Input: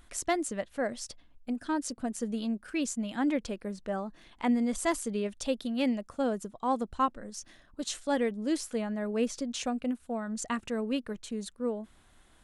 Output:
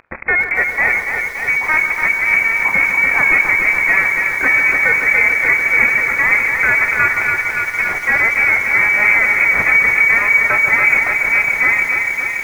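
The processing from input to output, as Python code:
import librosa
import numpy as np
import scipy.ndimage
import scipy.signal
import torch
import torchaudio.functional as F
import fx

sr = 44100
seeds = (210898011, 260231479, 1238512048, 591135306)

y = fx.cvsd(x, sr, bps=16000)
y = scipy.signal.sosfilt(scipy.signal.butter(2, 73.0, 'highpass', fs=sr, output='sos'), y)
y = fx.low_shelf(y, sr, hz=93.0, db=-7.0)
y = fx.hum_notches(y, sr, base_hz=50, count=6)
y = fx.leveller(y, sr, passes=5)
y = fx.freq_invert(y, sr, carrier_hz=2500)
y = fx.echo_split(y, sr, split_hz=1900.0, low_ms=144, high_ms=569, feedback_pct=52, wet_db=-10)
y = fx.rev_schroeder(y, sr, rt60_s=3.8, comb_ms=27, drr_db=14.0)
y = fx.echo_crushed(y, sr, ms=286, feedback_pct=80, bits=7, wet_db=-6.0)
y = y * 10.0 ** (6.0 / 20.0)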